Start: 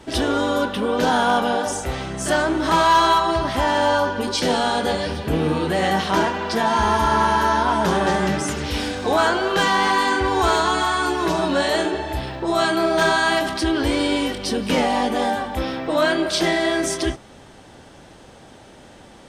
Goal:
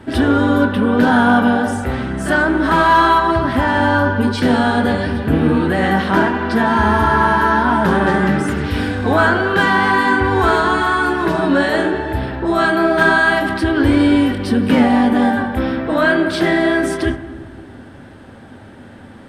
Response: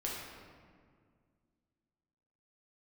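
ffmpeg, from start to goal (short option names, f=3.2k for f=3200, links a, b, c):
-filter_complex "[0:a]equalizer=f=100:t=o:w=0.67:g=11,equalizer=f=250:t=o:w=0.67:g=10,equalizer=f=1.6k:t=o:w=0.67:g=8,equalizer=f=6.3k:t=o:w=0.67:g=-10,asplit=2[a][b];[1:a]atrim=start_sample=2205,asetrate=57330,aresample=44100,lowpass=2.3k[c];[b][c]afir=irnorm=-1:irlink=0,volume=-7.5dB[d];[a][d]amix=inputs=2:normalize=0,volume=-1dB"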